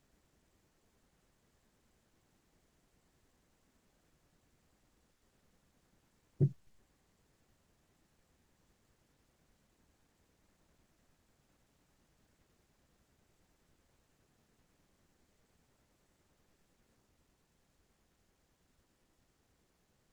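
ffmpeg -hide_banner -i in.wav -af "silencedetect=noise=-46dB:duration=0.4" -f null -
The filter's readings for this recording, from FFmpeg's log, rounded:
silence_start: 0.00
silence_end: 6.41 | silence_duration: 6.41
silence_start: 6.52
silence_end: 20.12 | silence_duration: 13.61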